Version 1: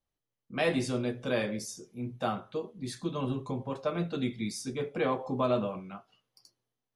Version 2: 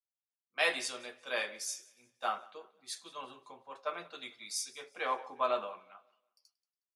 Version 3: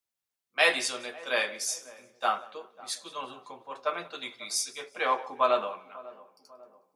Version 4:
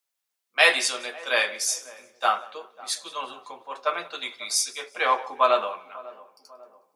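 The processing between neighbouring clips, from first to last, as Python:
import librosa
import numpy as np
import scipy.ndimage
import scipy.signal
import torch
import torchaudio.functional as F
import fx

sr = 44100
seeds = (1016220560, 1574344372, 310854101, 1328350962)

y1 = scipy.signal.sosfilt(scipy.signal.butter(2, 930.0, 'highpass', fs=sr, output='sos'), x)
y1 = fx.echo_feedback(y1, sr, ms=182, feedback_pct=55, wet_db=-19.5)
y1 = fx.band_widen(y1, sr, depth_pct=70)
y2 = fx.echo_filtered(y1, sr, ms=546, feedback_pct=58, hz=860.0, wet_db=-18)
y2 = F.gain(torch.from_numpy(y2), 7.0).numpy()
y3 = fx.highpass(y2, sr, hz=530.0, slope=6)
y3 = F.gain(torch.from_numpy(y3), 6.0).numpy()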